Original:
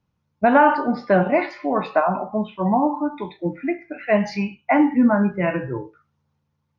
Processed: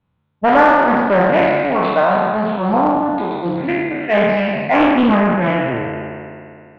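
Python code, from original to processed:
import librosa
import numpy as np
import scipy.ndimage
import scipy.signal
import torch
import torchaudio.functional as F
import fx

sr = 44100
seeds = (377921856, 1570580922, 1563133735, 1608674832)

p1 = fx.spec_trails(x, sr, decay_s=2.43)
p2 = scipy.signal.sosfilt(scipy.signal.ellip(4, 1.0, 40, 3700.0, 'lowpass', fs=sr, output='sos'), p1)
p3 = 10.0 ** (-13.0 / 20.0) * np.tanh(p2 / 10.0 ** (-13.0 / 20.0))
p4 = p2 + (p3 * librosa.db_to_amplitude(-6.0))
p5 = fx.doppler_dist(p4, sr, depth_ms=0.42)
y = p5 * librosa.db_to_amplitude(-1.5)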